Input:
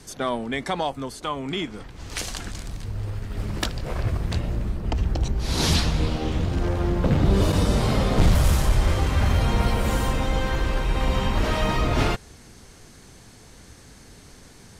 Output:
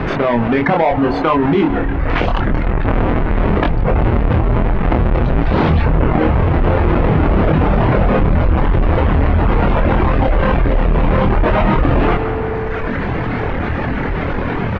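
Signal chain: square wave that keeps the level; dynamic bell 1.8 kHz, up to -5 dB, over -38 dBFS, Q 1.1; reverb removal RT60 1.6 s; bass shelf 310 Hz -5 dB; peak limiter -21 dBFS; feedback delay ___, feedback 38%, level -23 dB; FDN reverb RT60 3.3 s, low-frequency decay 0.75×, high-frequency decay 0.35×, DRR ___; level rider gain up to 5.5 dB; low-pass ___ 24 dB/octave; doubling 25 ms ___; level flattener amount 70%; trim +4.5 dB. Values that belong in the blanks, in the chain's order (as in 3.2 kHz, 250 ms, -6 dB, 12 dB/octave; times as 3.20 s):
172 ms, 18 dB, 2.3 kHz, -4 dB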